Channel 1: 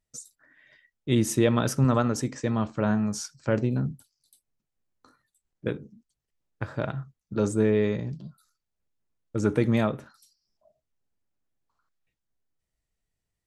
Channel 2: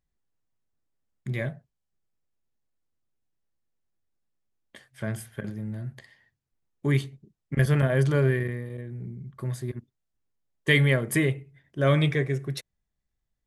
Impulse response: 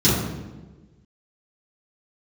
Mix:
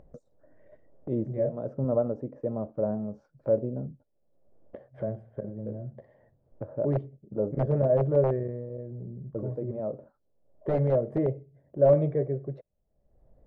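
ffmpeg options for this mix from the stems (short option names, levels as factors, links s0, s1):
-filter_complex "[0:a]agate=range=0.158:threshold=0.00178:ratio=16:detection=peak,volume=0.355[s0];[1:a]aeval=exprs='(mod(4.47*val(0)+1,2)-1)/4.47':c=same,volume=0.531,asplit=2[s1][s2];[s2]apad=whole_len=593703[s3];[s0][s3]sidechaincompress=threshold=0.00631:ratio=5:attack=16:release=286[s4];[s4][s1]amix=inputs=2:normalize=0,lowpass=f=580:t=q:w=4.9,acompressor=mode=upward:threshold=0.0224:ratio=2.5"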